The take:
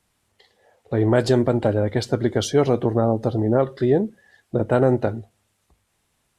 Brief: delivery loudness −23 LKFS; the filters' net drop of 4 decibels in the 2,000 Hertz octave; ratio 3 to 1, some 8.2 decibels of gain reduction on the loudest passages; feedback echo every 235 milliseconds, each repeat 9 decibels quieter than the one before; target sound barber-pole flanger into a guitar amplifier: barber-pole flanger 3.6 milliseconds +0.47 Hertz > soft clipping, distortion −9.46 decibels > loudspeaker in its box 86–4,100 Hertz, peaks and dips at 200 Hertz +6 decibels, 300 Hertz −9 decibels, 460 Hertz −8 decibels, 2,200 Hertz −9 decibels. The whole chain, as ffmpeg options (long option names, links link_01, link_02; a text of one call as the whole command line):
ffmpeg -i in.wav -filter_complex "[0:a]equalizer=frequency=2000:width_type=o:gain=-3.5,acompressor=threshold=-24dB:ratio=3,aecho=1:1:235|470|705|940:0.355|0.124|0.0435|0.0152,asplit=2[link_01][link_02];[link_02]adelay=3.6,afreqshift=0.47[link_03];[link_01][link_03]amix=inputs=2:normalize=1,asoftclip=threshold=-29.5dB,highpass=86,equalizer=frequency=200:width_type=q:width=4:gain=6,equalizer=frequency=300:width_type=q:width=4:gain=-9,equalizer=frequency=460:width_type=q:width=4:gain=-8,equalizer=frequency=2200:width_type=q:width=4:gain=-9,lowpass=frequency=4100:width=0.5412,lowpass=frequency=4100:width=1.3066,volume=14.5dB" out.wav